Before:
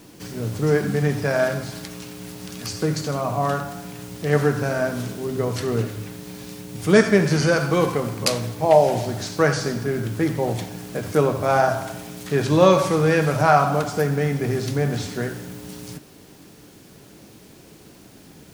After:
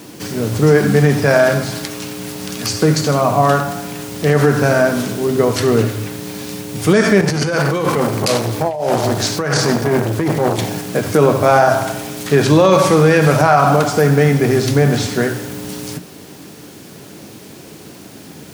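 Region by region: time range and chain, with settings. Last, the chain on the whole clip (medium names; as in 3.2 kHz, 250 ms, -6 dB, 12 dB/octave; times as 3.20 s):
7.21–10.81 s: compressor with a negative ratio -24 dBFS + transformer saturation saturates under 680 Hz
whole clip: high-pass 89 Hz; hum notches 60/120/180 Hz; loudness maximiser +11.5 dB; trim -1 dB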